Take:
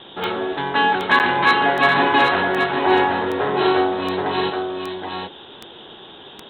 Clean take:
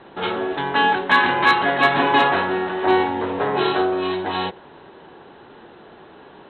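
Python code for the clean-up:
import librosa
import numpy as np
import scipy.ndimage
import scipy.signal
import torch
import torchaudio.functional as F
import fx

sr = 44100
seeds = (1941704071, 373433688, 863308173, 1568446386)

y = fx.fix_declick_ar(x, sr, threshold=10.0)
y = fx.fix_interpolate(y, sr, at_s=(1.19,), length_ms=9.2)
y = fx.noise_reduce(y, sr, print_start_s=5.96, print_end_s=6.46, reduce_db=6.0)
y = fx.fix_echo_inverse(y, sr, delay_ms=774, level_db=-5.0)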